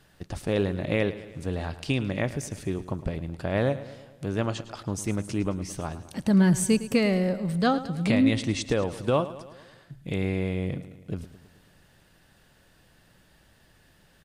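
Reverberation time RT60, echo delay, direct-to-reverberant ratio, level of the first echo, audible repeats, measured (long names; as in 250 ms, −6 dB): no reverb audible, 108 ms, no reverb audible, −15.0 dB, 5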